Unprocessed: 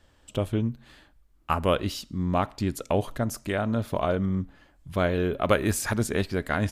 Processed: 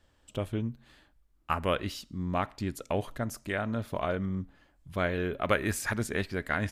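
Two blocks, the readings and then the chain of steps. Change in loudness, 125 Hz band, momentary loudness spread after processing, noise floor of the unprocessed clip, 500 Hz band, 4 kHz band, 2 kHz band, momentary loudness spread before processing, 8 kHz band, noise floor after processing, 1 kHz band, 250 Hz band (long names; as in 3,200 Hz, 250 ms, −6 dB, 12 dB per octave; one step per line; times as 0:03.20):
−5.0 dB, −6.0 dB, 9 LU, −61 dBFS, −5.5 dB, −4.5 dB, −0.5 dB, 8 LU, −6.0 dB, −67 dBFS, −4.0 dB, −6.0 dB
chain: dynamic equaliser 1,900 Hz, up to +7 dB, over −43 dBFS, Q 1.4
level −6 dB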